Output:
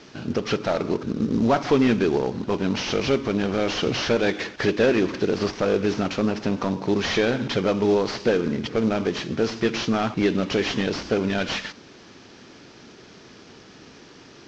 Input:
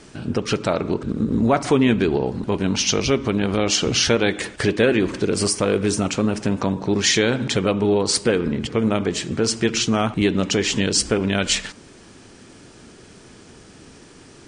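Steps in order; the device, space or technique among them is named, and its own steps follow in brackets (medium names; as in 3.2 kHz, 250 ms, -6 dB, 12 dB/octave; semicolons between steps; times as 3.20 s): early wireless headset (high-pass 160 Hz 6 dB/octave; CVSD coder 32 kbps)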